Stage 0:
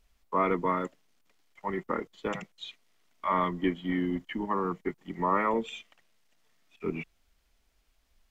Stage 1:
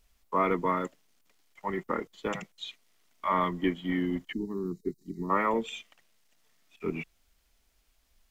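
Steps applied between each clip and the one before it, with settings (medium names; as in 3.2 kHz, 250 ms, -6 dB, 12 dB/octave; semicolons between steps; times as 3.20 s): time-frequency box 4.32–5.30 s, 450–3700 Hz -22 dB; treble shelf 5.4 kHz +6.5 dB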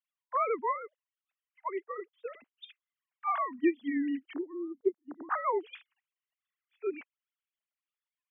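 formants replaced by sine waves; wow and flutter 94 cents; upward expansion 1.5:1, over -45 dBFS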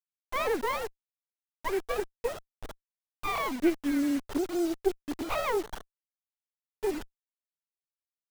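in parallel at -1 dB: compressor with a negative ratio -35 dBFS, ratio -0.5; on the sum: bit crusher 7-bit; sliding maximum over 17 samples; trim +1.5 dB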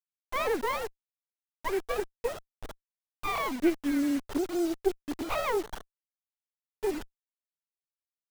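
no audible change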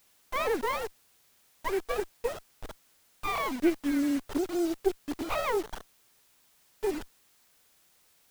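added noise white -65 dBFS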